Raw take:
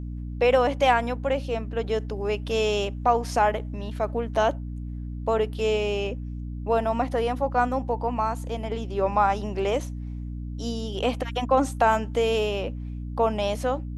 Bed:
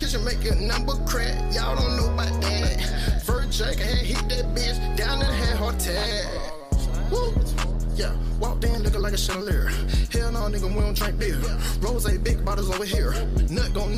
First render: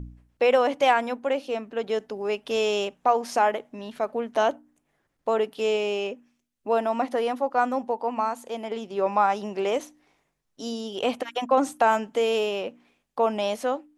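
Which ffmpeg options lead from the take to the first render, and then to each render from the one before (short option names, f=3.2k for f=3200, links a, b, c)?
-af "bandreject=f=60:t=h:w=4,bandreject=f=120:t=h:w=4,bandreject=f=180:t=h:w=4,bandreject=f=240:t=h:w=4,bandreject=f=300:t=h:w=4"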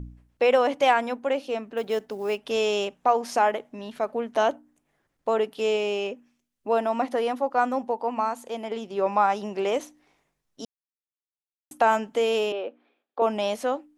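-filter_complex "[0:a]asettb=1/sr,asplit=3[a][b][c];[a]atrim=end=1.774[d];[b]atrim=start=1.77:end=2.38,asetpts=PTS-STARTPTS,afade=t=in:d=0.004:c=qsin,afade=t=out:st=0.606:d=0.004:c=qsin,acrusher=bits=7:mode=log:mix=0:aa=0.000001[e];[c]atrim=start=2.376[f];[d][e]acrossfade=d=0.004:c1=hsin:c2=qsin[g];[g][f]acrossfade=d=0.004:c1=qsin:c2=hsin,asettb=1/sr,asplit=3[h][i][j];[h]atrim=end=12.524[k];[i]atrim=start=12.52:end=13.22,asetpts=PTS-STARTPTS,afade=t=in:d=0.004:c=qsin,afade=t=out:st=0.696:d=0.004:c=qsin,highpass=f=300:w=0.5412,highpass=f=300:w=1.3066,equalizer=f=1k:t=q:w=4:g=-6,equalizer=f=2k:t=q:w=4:g=-7,equalizer=f=2.8k:t=q:w=4:g=-6,lowpass=f=3.4k:w=0.5412,lowpass=f=3.4k:w=1.3066[l];[j]atrim=start=13.216[m];[k][l]acrossfade=d=0.004:c1=hsin:c2=qsin[n];[n][m]acrossfade=d=0.004:c1=qsin:c2=hsin,asplit=3[o][p][q];[o]atrim=end=10.65,asetpts=PTS-STARTPTS,afade=t=out:st=10.646:d=0.004:c=hsin[r];[p]atrim=start=10.65:end=11.71,asetpts=PTS-STARTPTS,volume=0[s];[q]atrim=start=11.71,asetpts=PTS-STARTPTS,afade=t=in:d=0.004:c=hsin[t];[r][s][t]concat=n=3:v=0:a=1"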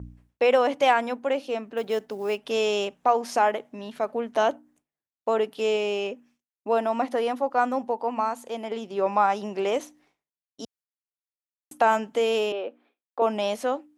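-af "agate=range=-33dB:threshold=-55dB:ratio=3:detection=peak,highpass=58"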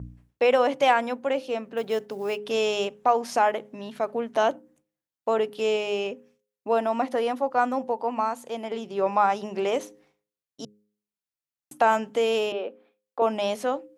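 -af "equalizer=f=140:w=4.9:g=9.5,bandreject=f=104.3:t=h:w=4,bandreject=f=208.6:t=h:w=4,bandreject=f=312.9:t=h:w=4,bandreject=f=417.2:t=h:w=4,bandreject=f=521.5:t=h:w=4"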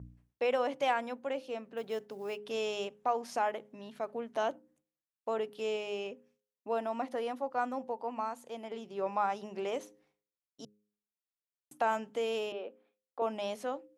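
-af "volume=-10dB"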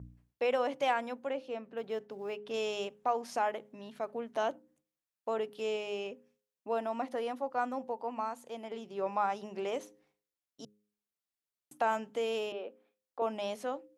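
-filter_complex "[0:a]asettb=1/sr,asplit=3[a][b][c];[a]atrim=end=1.304[d];[b]atrim=start=1.3:end=2.54,asetpts=PTS-STARTPTS,afade=t=in:d=0.004:c=qsin,afade=t=out:st=1.236:d=0.004:c=qsin,highshelf=f=5.8k:g=-12[e];[c]atrim=start=2.536[f];[d][e]acrossfade=d=0.004:c1=hsin:c2=qsin[g];[g][f]acrossfade=d=0.004:c1=qsin:c2=hsin"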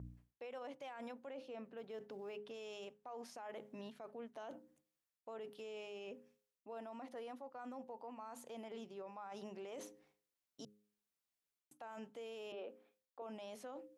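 -af "areverse,acompressor=threshold=-41dB:ratio=8,areverse,alimiter=level_in=17dB:limit=-24dB:level=0:latency=1:release=29,volume=-17dB"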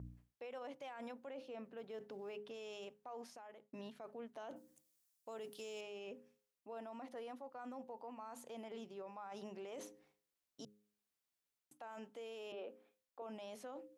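-filter_complex "[0:a]asettb=1/sr,asplit=3[a][b][c];[a]atrim=end=4.564[d];[b]atrim=start=4.56:end=5.81,asetpts=PTS-STARTPTS,afade=t=in:d=0.004:c=qsin,afade=t=out:st=1.246:d=0.004:c=qsin,bass=f=250:g=1,treble=f=4k:g=13[e];[c]atrim=start=5.806[f];[d][e]acrossfade=d=0.004:c1=hsin:c2=qsin[g];[g][f]acrossfade=d=0.004:c1=qsin:c2=hsin,asettb=1/sr,asplit=3[h][i][j];[h]atrim=end=11.804[k];[i]atrim=start=11.8:end=12.5,asetpts=PTS-STARTPTS,afade=t=in:d=0.004:c=qsin,afade=t=out:st=0.696:d=0.004:c=qsin,equalizer=f=120:t=o:w=0.77:g=-11.5[l];[j]atrim=start=12.496[m];[k][l]acrossfade=d=0.004:c1=hsin:c2=qsin[n];[n][m]acrossfade=d=0.004:c1=qsin:c2=hsin,asplit=2[o][p];[o]atrim=end=3.73,asetpts=PTS-STARTPTS,afade=t=out:st=3.17:d=0.56[q];[p]atrim=start=3.73,asetpts=PTS-STARTPTS,afade=t=in:d=0.004:c=hsin[r];[q][r]concat=n=2:v=0:a=1"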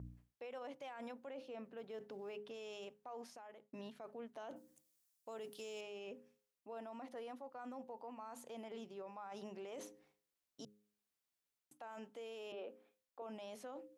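-af anull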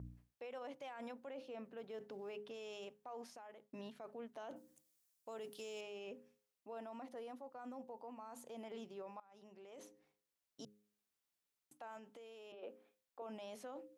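-filter_complex "[0:a]asettb=1/sr,asplit=3[a][b][c];[a]atrim=end=7.034[d];[b]atrim=start=7.03:end=8.61,asetpts=PTS-STARTPTS,afade=t=in:d=0.004:c=qsin,afade=t=out:st=1.576:d=0.004:c=qsin,equalizer=f=2.1k:t=o:w=2.6:g=-3.5[e];[c]atrim=start=8.606[f];[d][e]acrossfade=d=0.004:c1=hsin:c2=qsin[g];[g][f]acrossfade=d=0.004:c1=qsin:c2=hsin,asettb=1/sr,asplit=3[h][i][j];[h]atrim=end=11.974[k];[i]atrim=start=11.97:end=12.63,asetpts=PTS-STARTPTS,afade=t=in:d=0.004:c=qsin,afade=t=out:st=0.656:d=0.004:c=qsin,acompressor=threshold=-53dB:ratio=5:attack=3.2:release=140:knee=1:detection=peak[l];[j]atrim=start=12.626[m];[k][l]acrossfade=d=0.004:c1=hsin:c2=qsin[n];[n][m]acrossfade=d=0.004:c1=qsin:c2=hsin,asplit=2[o][p];[o]atrim=end=9.2,asetpts=PTS-STARTPTS,afade=t=out:st=9.196:d=0.004:c=hsin:silence=0.1[q];[p]atrim=start=9.2,asetpts=PTS-STARTPTS,afade=t=in:d=1.46:silence=0.1[r];[q][r]concat=n=2:v=0:a=1"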